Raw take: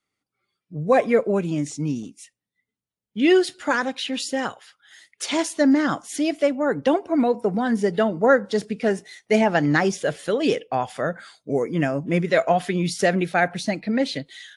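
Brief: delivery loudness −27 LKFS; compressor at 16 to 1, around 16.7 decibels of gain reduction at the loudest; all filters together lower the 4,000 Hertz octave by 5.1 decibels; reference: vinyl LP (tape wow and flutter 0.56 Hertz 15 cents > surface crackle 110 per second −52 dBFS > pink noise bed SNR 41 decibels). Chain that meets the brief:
parametric band 4,000 Hz −7 dB
downward compressor 16 to 1, threshold −30 dBFS
tape wow and flutter 0.56 Hz 15 cents
surface crackle 110 per second −52 dBFS
pink noise bed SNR 41 dB
level +8.5 dB

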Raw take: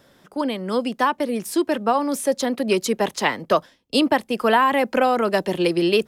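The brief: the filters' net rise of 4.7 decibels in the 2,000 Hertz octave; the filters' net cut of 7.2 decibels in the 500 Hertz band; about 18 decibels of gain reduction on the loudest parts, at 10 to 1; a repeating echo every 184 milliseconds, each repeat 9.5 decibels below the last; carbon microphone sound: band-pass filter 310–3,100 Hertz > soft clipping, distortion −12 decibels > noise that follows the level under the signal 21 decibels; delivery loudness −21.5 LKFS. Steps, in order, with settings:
parametric band 500 Hz −8.5 dB
parametric band 2,000 Hz +7 dB
downward compressor 10 to 1, threshold −31 dBFS
band-pass filter 310–3,100 Hz
repeating echo 184 ms, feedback 33%, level −9.5 dB
soft clipping −33 dBFS
noise that follows the level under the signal 21 dB
level +18 dB

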